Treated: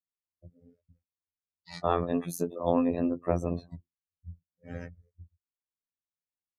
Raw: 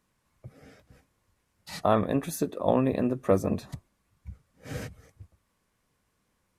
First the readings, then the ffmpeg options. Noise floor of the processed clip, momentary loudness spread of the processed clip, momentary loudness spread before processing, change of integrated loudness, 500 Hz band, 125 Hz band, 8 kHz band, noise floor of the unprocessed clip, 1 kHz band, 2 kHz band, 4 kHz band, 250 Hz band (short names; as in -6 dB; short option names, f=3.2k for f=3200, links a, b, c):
under -85 dBFS, 23 LU, 18 LU, -3.0 dB, -3.5 dB, -3.5 dB, -4.5 dB, -75 dBFS, -2.5 dB, -5.5 dB, -5.0 dB, -2.0 dB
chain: -af "afftdn=nr=34:nf=-43,afftfilt=real='hypot(re,im)*cos(PI*b)':imag='0':win_size=2048:overlap=0.75,volume=1dB"